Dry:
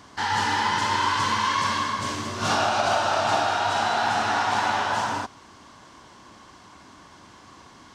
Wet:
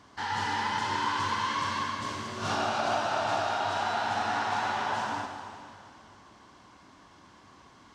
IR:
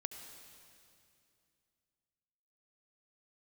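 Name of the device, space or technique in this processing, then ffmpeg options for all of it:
swimming-pool hall: -filter_complex "[1:a]atrim=start_sample=2205[a];[0:a][a]afir=irnorm=-1:irlink=0,highshelf=f=5.9k:g=-6,volume=-4dB"

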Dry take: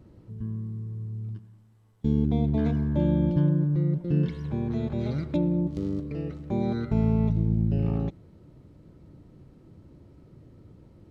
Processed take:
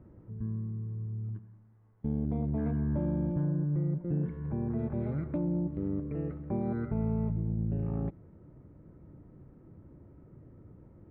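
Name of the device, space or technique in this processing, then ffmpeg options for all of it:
soft clipper into limiter: -filter_complex "[0:a]asoftclip=type=tanh:threshold=-14.5dB,alimiter=limit=-21.5dB:level=0:latency=1:release=328,lowpass=f=1.9k:w=0.5412,lowpass=f=1.9k:w=1.3066,asettb=1/sr,asplit=3[a][b][c];[a]atrim=end=4.104[d];[b]atrim=start=4.1:end=4.79,asetpts=PTS-STARTPTS,afade=t=in:d=0.004:c=qsin,afade=t=out:st=0.686:d=0.004:c=qsin,aemphasis=mode=reproduction:type=75kf[e];[c]atrim=start=4.786[f];[d][e]acrossfade=d=0.004:c1=hsin:c2=qsin[g];[g][f]acrossfade=d=0.004:c1=qsin:c2=hsin,volume=-2dB"

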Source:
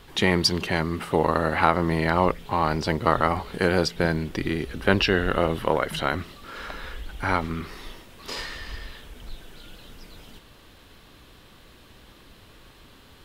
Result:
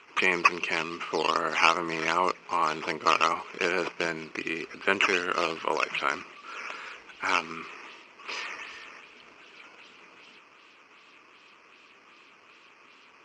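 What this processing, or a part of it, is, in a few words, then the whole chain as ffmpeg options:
circuit-bent sampling toy: -af "acrusher=samples=8:mix=1:aa=0.000001:lfo=1:lforange=8:lforate=2.6,highpass=470,equalizer=f=540:t=q:w=4:g=-6,equalizer=f=760:t=q:w=4:g=-9,equalizer=f=1.2k:t=q:w=4:g=3,equalizer=f=1.7k:t=q:w=4:g=-5,equalizer=f=2.5k:t=q:w=4:g=9,equalizer=f=3.7k:t=q:w=4:g=-9,lowpass=f=5.4k:w=0.5412,lowpass=f=5.4k:w=1.3066"

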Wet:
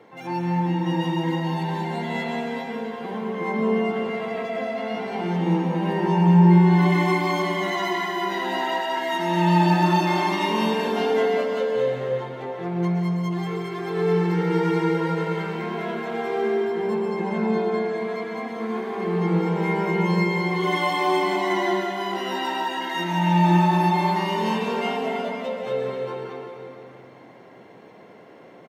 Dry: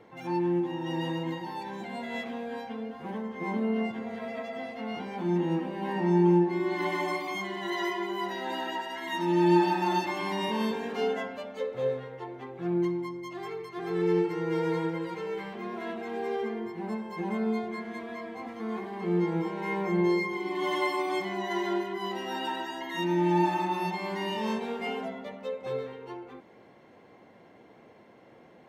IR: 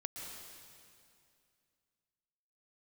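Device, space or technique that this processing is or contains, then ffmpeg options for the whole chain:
stairwell: -filter_complex "[0:a]highpass=130,bandreject=f=50:t=h:w=6,bandreject=f=100:t=h:w=6,bandreject=f=150:t=h:w=6,bandreject=f=200:t=h:w=6,bandreject=f=250:t=h:w=6,bandreject=f=300:t=h:w=6,bandreject=f=350:t=h:w=6,asettb=1/sr,asplit=3[a][b][c];[a]atrim=end=16.964[d];[b]atrim=start=16.96:end=17.98,asetpts=PTS-STARTPTS,afade=t=in:d=0.004:c=qsin,afade=t=out:st=1.016:d=0.004:c=qsin,lowpass=6.8k[e];[c]atrim=start=17.976[f];[d][e]acrossfade=d=0.004:c1=hsin:c2=qsin[g];[g][f]acrossfade=d=0.004:c1=qsin:c2=hsin[h];[1:a]atrim=start_sample=2205[i];[h][i]afir=irnorm=-1:irlink=0,asplit=2[j][k];[k]adelay=177,lowpass=f=2k:p=1,volume=-6dB,asplit=2[l][m];[m]adelay=177,lowpass=f=2k:p=1,volume=0.55,asplit=2[n][o];[o]adelay=177,lowpass=f=2k:p=1,volume=0.55,asplit=2[p][q];[q]adelay=177,lowpass=f=2k:p=1,volume=0.55,asplit=2[r][s];[s]adelay=177,lowpass=f=2k:p=1,volume=0.55,asplit=2[t][u];[u]adelay=177,lowpass=f=2k:p=1,volume=0.55,asplit=2[v][w];[w]adelay=177,lowpass=f=2k:p=1,volume=0.55[x];[j][l][n][p][r][t][v][x]amix=inputs=8:normalize=0,volume=8.5dB"

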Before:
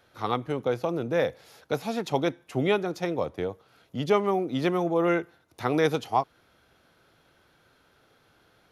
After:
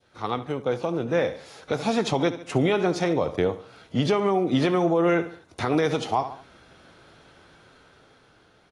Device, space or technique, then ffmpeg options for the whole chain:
low-bitrate web radio: -af "adynamicequalizer=threshold=0.0178:dfrequency=1500:dqfactor=0.81:tfrequency=1500:tqfactor=0.81:attack=5:release=100:ratio=0.375:range=1.5:mode=cutabove:tftype=bell,aecho=1:1:71|142|213:0.158|0.0539|0.0183,dynaudnorm=f=340:g=9:m=13dB,alimiter=limit=-12.5dB:level=0:latency=1:release=135" -ar 22050 -c:a aac -b:a 32k

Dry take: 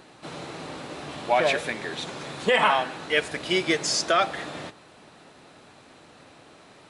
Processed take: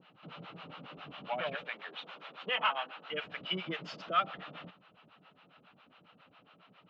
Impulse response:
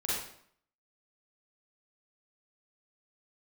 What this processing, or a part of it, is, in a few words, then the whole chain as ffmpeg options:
guitar amplifier with harmonic tremolo: -filter_complex "[0:a]asettb=1/sr,asplit=3[a][b][c];[a]atrim=end=1.644[d];[b]atrim=start=1.64:end=3.08,asetpts=PTS-STARTPTS,afade=t=in:d=0.004:c=qsin,afade=t=out:st=1.436:d=0.004:c=qsin,highpass=410[e];[c]atrim=start=3.076[f];[d][e]acrossfade=d=0.004:c1=hsin:c2=qsin[g];[g][f]acrossfade=d=0.004:c1=qsin:c2=hsin,acrossover=split=560[h][i];[h]aeval=exprs='val(0)*(1-1/2+1/2*cos(2*PI*7.3*n/s))':c=same[j];[i]aeval=exprs='val(0)*(1-1/2-1/2*cos(2*PI*7.3*n/s))':c=same[k];[j][k]amix=inputs=2:normalize=0,asoftclip=type=tanh:threshold=-16dB,highpass=78,equalizer=f=86:t=q:w=4:g=-7,equalizer=f=180:t=q:w=4:g=8,equalizer=f=360:t=q:w=4:g=-7,equalizer=f=1.3k:t=q:w=4:g=8,equalizer=f=1.8k:t=q:w=4:g=-3,equalizer=f=2.9k:t=q:w=4:g=10,lowpass=f=3.5k:w=0.5412,lowpass=f=3.5k:w=1.3066,volume=-8dB"

